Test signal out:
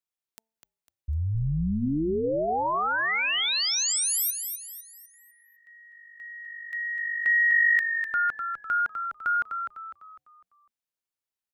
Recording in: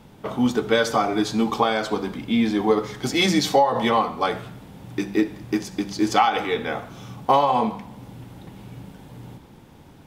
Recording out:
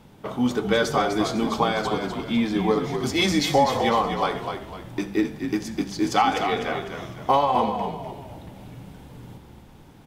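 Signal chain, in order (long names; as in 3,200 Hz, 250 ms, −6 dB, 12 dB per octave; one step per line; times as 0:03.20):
hum removal 223 Hz, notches 4
echo with shifted repeats 251 ms, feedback 40%, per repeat −49 Hz, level −7 dB
level −2 dB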